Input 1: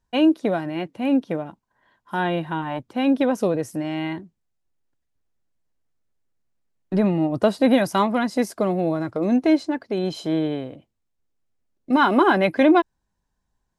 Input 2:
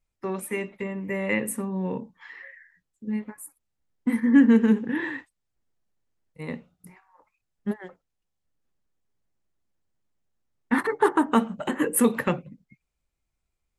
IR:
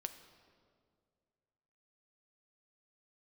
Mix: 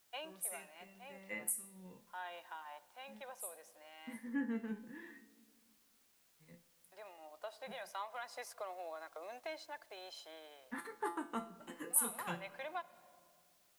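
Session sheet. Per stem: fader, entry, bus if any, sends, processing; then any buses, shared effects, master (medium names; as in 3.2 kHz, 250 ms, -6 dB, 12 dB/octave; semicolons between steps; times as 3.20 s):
-16.0 dB, 0.00 s, send -8.5 dB, high-pass 670 Hz 24 dB/octave; bit crusher 9-bit; auto duck -11 dB, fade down 0.65 s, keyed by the second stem
-1.5 dB, 0.00 s, send -5.5 dB, pre-emphasis filter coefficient 0.8; feedback comb 170 Hz, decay 0.41 s, harmonics all, mix 80%; three bands expanded up and down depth 100%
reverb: on, RT60 2.1 s, pre-delay 6 ms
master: word length cut 12-bit, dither triangular; compression 1.5:1, threshold -43 dBFS, peak gain reduction 9 dB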